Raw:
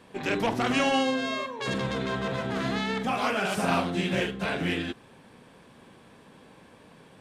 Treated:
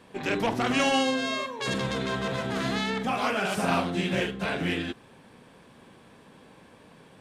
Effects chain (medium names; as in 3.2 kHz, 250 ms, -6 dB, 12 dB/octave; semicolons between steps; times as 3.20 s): 0.79–2.90 s: treble shelf 4.2 kHz +6.5 dB